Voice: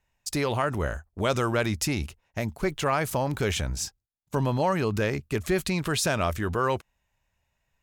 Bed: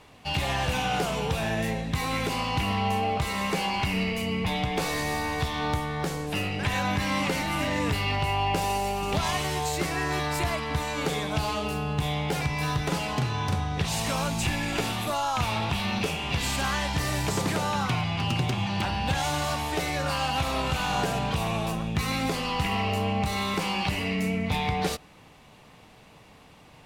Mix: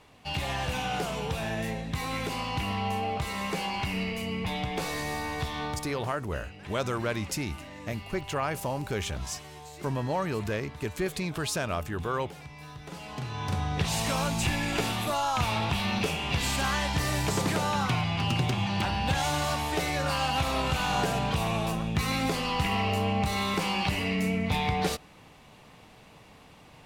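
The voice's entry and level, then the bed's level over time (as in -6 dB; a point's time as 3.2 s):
5.50 s, -5.0 dB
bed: 5.61 s -4 dB
6.19 s -17 dB
12.76 s -17 dB
13.66 s -0.5 dB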